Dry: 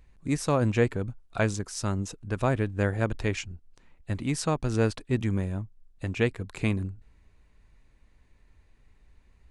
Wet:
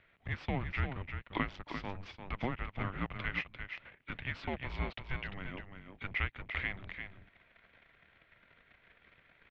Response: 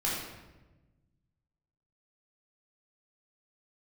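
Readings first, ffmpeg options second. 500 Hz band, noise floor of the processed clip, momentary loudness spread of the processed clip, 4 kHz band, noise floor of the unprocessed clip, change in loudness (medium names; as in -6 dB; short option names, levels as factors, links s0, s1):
-17.0 dB, -68 dBFS, 10 LU, -6.0 dB, -61 dBFS, -10.5 dB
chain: -filter_complex "[0:a]acrossover=split=1700[s0][s1];[s1]aexciter=amount=3.2:drive=4.4:freq=2200[s2];[s0][s2]amix=inputs=2:normalize=0,acompressor=threshold=0.01:ratio=3,asubboost=boost=6.5:cutoff=72,asplit=2[s3][s4];[s4]acrusher=bits=5:mix=0:aa=0.5,volume=0.631[s5];[s3][s5]amix=inputs=2:normalize=0,aecho=1:1:346:0.422,highpass=f=310:t=q:w=0.5412,highpass=f=310:t=q:w=1.307,lowpass=f=3400:t=q:w=0.5176,lowpass=f=3400:t=q:w=0.7071,lowpass=f=3400:t=q:w=1.932,afreqshift=-390,volume=1.33"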